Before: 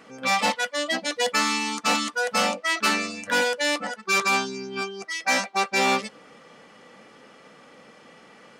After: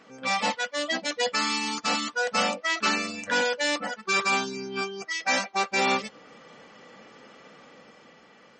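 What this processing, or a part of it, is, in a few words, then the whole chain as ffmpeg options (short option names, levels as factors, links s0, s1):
low-bitrate web radio: -filter_complex "[0:a]asettb=1/sr,asplit=3[s0][s1][s2];[s0]atrim=end=1.134[s3];[s1]atrim=start=1.13:end=2.01,asetpts=PTS-STARTPTS,afade=t=in:d=0.004:c=qsin,afade=t=out:st=0.876:d=0.004:c=qsin,adynamicequalizer=threshold=0.00562:dfrequency=4800:dqfactor=5.7:tfrequency=4800:tqfactor=5.7:attack=5:release=100:ratio=0.375:range=3:mode=boostabove:tftype=bell[s4];[s2]atrim=start=2.006[s5];[s3][s4]acrossfade=d=0.004:c1=hsin:c2=qsin[s6];[s6][s5]acrossfade=d=0.004:c1=qsin:c2=hsin,dynaudnorm=f=140:g=13:m=1.58,alimiter=limit=0.188:level=0:latency=1:release=440,volume=0.668" -ar 44100 -c:a libmp3lame -b:a 32k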